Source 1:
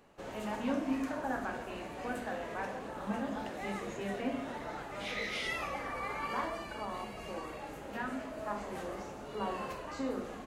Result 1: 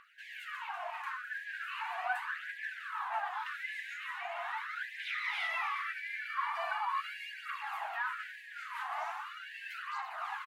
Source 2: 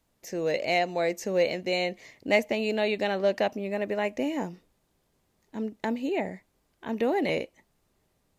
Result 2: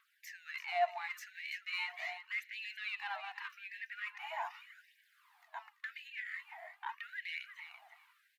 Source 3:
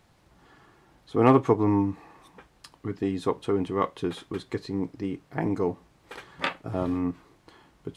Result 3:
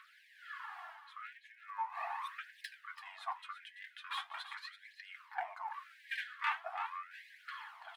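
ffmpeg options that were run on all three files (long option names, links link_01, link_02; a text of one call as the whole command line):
ffmpeg -i in.wav -filter_complex "[0:a]dynaudnorm=framelen=290:gausssize=3:maxgain=3dB,highpass=260,bandreject=frequency=60:width_type=h:width=6,bandreject=frequency=120:width_type=h:width=6,bandreject=frequency=180:width_type=h:width=6,bandreject=frequency=240:width_type=h:width=6,bandreject=frequency=300:width_type=h:width=6,bandreject=frequency=360:width_type=h:width=6,bandreject=frequency=420:width_type=h:width=6,bandreject=frequency=480:width_type=h:width=6,bandreject=frequency=540:width_type=h:width=6,bandreject=frequency=600:width_type=h:width=6,alimiter=limit=-13dB:level=0:latency=1:release=484,equalizer=frequency=790:width=7:gain=-3,areverse,acompressor=threshold=-38dB:ratio=6,areverse,asoftclip=type=tanh:threshold=-31dB,asplit=2[link_01][link_02];[link_02]highpass=frequency=720:poles=1,volume=7dB,asoftclip=type=tanh:threshold=-32dB[link_03];[link_01][link_03]amix=inputs=2:normalize=0,lowpass=frequency=3200:poles=1,volume=-6dB,equalizer=frequency=6500:width=0.7:gain=-14,aecho=1:1:335|670:0.282|0.0451,aphaser=in_gain=1:out_gain=1:delay=4.2:decay=0.44:speed=0.4:type=triangular,afftfilt=real='re*gte(b*sr/1024,640*pow(1600/640,0.5+0.5*sin(2*PI*0.86*pts/sr)))':imag='im*gte(b*sr/1024,640*pow(1600/640,0.5+0.5*sin(2*PI*0.86*pts/sr)))':win_size=1024:overlap=0.75,volume=8.5dB" out.wav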